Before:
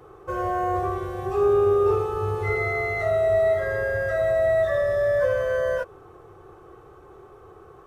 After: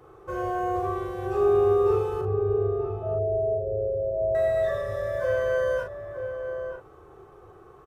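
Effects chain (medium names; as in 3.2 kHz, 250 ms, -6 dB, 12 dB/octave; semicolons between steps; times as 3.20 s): 2.21–4.35 s: steep low-pass 650 Hz 96 dB/octave; doubling 39 ms -5.5 dB; echo from a far wall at 160 m, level -7 dB; trim -4 dB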